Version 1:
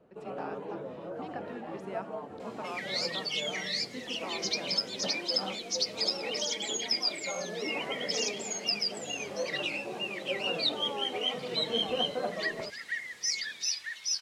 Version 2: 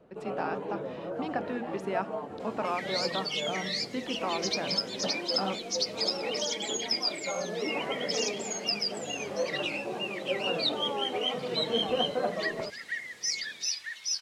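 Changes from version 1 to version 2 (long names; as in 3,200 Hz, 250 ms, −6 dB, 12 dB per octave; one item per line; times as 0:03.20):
speech +9.0 dB
first sound +3.5 dB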